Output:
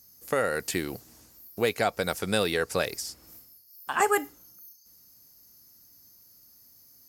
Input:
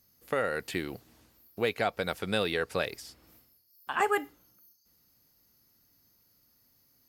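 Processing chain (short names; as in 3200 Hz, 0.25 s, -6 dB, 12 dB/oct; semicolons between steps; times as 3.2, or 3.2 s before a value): resonant high shelf 4500 Hz +7.5 dB, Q 1.5; gain +3.5 dB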